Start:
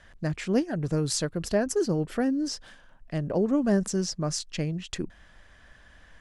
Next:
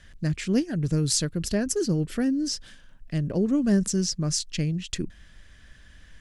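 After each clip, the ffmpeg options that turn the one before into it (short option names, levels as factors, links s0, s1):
-af "equalizer=f=810:t=o:w=2:g=-13.5,volume=1.88"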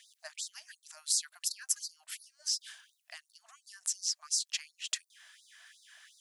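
-af "acompressor=threshold=0.0316:ratio=6,crystalizer=i=1:c=0,afftfilt=real='re*gte(b*sr/1024,590*pow(3700/590,0.5+0.5*sin(2*PI*2.8*pts/sr)))':imag='im*gte(b*sr/1024,590*pow(3700/590,0.5+0.5*sin(2*PI*2.8*pts/sr)))':win_size=1024:overlap=0.75"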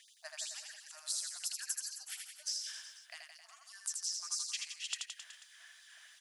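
-filter_complex "[0:a]acompressor=threshold=0.0224:ratio=6,asplit=2[s0][s1];[s1]aecho=0:1:80|168|264.8|371.3|488.4:0.631|0.398|0.251|0.158|0.1[s2];[s0][s2]amix=inputs=2:normalize=0,volume=0.794"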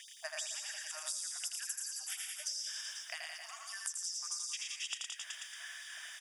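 -af "asuperstop=centerf=4200:order=8:qfactor=5.5,aecho=1:1:112:0.531,acompressor=threshold=0.00398:ratio=5,volume=2.99"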